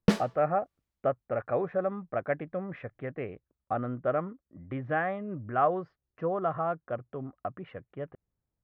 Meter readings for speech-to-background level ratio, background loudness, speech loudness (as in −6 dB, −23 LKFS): −2.0 dB, −30.5 LKFS, −32.5 LKFS